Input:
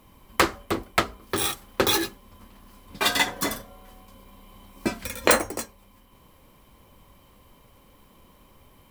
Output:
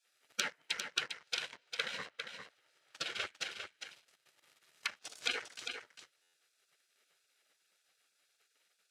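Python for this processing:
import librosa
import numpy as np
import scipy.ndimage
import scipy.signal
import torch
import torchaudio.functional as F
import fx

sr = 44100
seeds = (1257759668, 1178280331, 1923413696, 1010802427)

y = fx.lower_of_two(x, sr, delay_ms=1.0)
y = fx.env_lowpass_down(y, sr, base_hz=1100.0, full_db=-23.5)
y = fx.spec_gate(y, sr, threshold_db=-25, keep='weak')
y = fx.high_shelf(y, sr, hz=5300.0, db=-9.5, at=(1.45, 3.1))
y = fx.leveller(y, sr, passes=3)
y = fx.level_steps(y, sr, step_db=11, at=(3.62, 5.12))
y = fx.bandpass_edges(y, sr, low_hz=100.0, high_hz=7900.0)
y = y + 10.0 ** (-7.0 / 20.0) * np.pad(y, (int(401 * sr / 1000.0), 0))[:len(y)]
y = fx.buffer_glitch(y, sr, at_s=(6.22,), block=512, repeats=9)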